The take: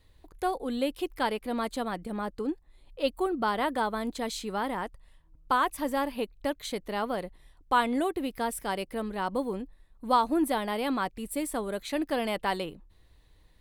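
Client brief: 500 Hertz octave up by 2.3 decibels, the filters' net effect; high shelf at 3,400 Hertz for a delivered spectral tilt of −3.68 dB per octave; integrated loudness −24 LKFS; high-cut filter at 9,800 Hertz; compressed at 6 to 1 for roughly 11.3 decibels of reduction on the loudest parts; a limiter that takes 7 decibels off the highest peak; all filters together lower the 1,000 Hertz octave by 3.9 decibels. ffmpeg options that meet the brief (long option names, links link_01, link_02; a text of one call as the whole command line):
ffmpeg -i in.wav -af "lowpass=9800,equalizer=frequency=500:width_type=o:gain=4.5,equalizer=frequency=1000:width_type=o:gain=-7,highshelf=frequency=3400:gain=6,acompressor=threshold=-33dB:ratio=6,volume=15.5dB,alimiter=limit=-13.5dB:level=0:latency=1" out.wav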